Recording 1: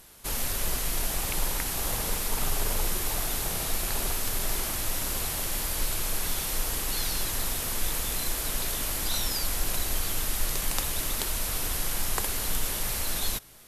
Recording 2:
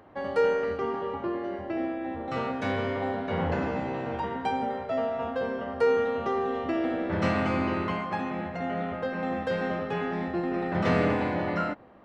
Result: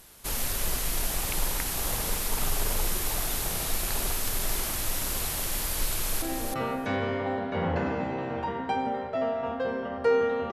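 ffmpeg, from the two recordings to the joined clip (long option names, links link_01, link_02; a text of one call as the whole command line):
ffmpeg -i cue0.wav -i cue1.wav -filter_complex "[0:a]apad=whole_dur=10.52,atrim=end=10.52,atrim=end=6.222[link_01];[1:a]atrim=start=1.978:end=6.28[link_02];[link_01][link_02]acrossfade=duration=0.004:curve1=hsin:curve2=hsin,asplit=2[link_03][link_04];[link_04]afade=type=in:start_time=5.89:duration=0.01,afade=type=out:start_time=6.22:duration=0.01,aecho=0:1:320|640:0.530884|0.0530884[link_05];[link_03][link_05]amix=inputs=2:normalize=0" out.wav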